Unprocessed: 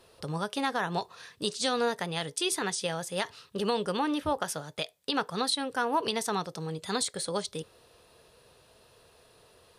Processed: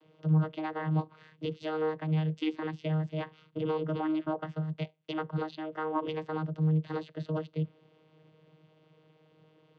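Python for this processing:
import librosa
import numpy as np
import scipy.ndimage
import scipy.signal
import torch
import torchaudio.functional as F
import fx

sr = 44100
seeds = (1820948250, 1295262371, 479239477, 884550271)

y = fx.bass_treble(x, sr, bass_db=5, treble_db=-11)
y = fx.env_lowpass_down(y, sr, base_hz=3000.0, full_db=-29.0)
y = fx.peak_eq(y, sr, hz=2900.0, db=9.5, octaves=0.43)
y = fx.vocoder(y, sr, bands=16, carrier='saw', carrier_hz=156.0)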